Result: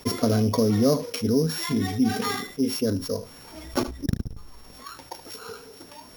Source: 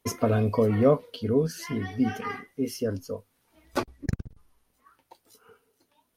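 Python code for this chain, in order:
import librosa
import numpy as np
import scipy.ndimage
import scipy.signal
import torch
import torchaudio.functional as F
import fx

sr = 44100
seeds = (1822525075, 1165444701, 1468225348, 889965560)

p1 = np.r_[np.sort(x[:len(x) // 8 * 8].reshape(-1, 8), axis=1).ravel(), x[len(x) // 8 * 8:]]
p2 = fx.dynamic_eq(p1, sr, hz=250.0, q=1.5, threshold_db=-37.0, ratio=4.0, max_db=6)
p3 = p2 + fx.echo_single(p2, sr, ms=75, db=-23.5, dry=0)
p4 = fx.env_flatten(p3, sr, amount_pct=50)
y = p4 * librosa.db_to_amplitude(-4.0)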